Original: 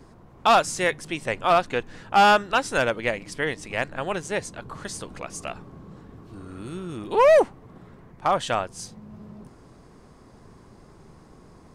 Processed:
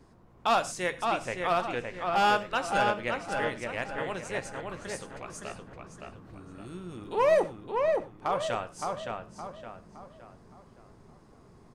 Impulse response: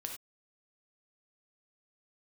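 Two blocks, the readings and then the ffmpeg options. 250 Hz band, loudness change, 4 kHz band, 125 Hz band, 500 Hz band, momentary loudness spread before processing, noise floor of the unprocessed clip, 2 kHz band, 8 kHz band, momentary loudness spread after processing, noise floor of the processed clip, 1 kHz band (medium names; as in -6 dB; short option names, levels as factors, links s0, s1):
-6.0 dB, -6.5 dB, -6.5 dB, -5.5 dB, -6.0 dB, 20 LU, -51 dBFS, -6.5 dB, -7.5 dB, 21 LU, -56 dBFS, -6.0 dB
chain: -filter_complex "[0:a]asplit=2[s0][s1];[s1]adelay=566,lowpass=f=3000:p=1,volume=0.668,asplit=2[s2][s3];[s3]adelay=566,lowpass=f=3000:p=1,volume=0.42,asplit=2[s4][s5];[s5]adelay=566,lowpass=f=3000:p=1,volume=0.42,asplit=2[s6][s7];[s7]adelay=566,lowpass=f=3000:p=1,volume=0.42,asplit=2[s8][s9];[s9]adelay=566,lowpass=f=3000:p=1,volume=0.42[s10];[s0][s2][s4][s6][s8][s10]amix=inputs=6:normalize=0,asplit=2[s11][s12];[1:a]atrim=start_sample=2205,adelay=17[s13];[s12][s13]afir=irnorm=-1:irlink=0,volume=0.335[s14];[s11][s14]amix=inputs=2:normalize=0,volume=0.398"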